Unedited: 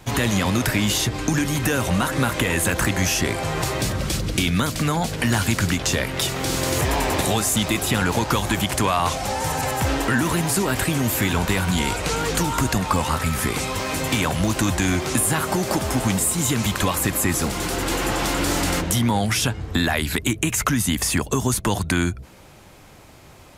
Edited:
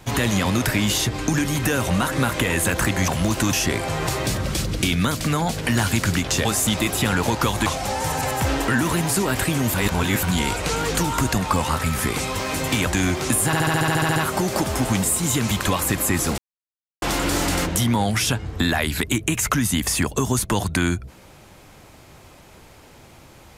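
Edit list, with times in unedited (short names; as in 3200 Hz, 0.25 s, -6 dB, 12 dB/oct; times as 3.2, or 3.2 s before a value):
6–7.34 cut
8.55–9.06 cut
11.14–11.63 reverse
14.27–14.72 move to 3.08
15.31 stutter 0.07 s, 11 plays
17.53–18.17 mute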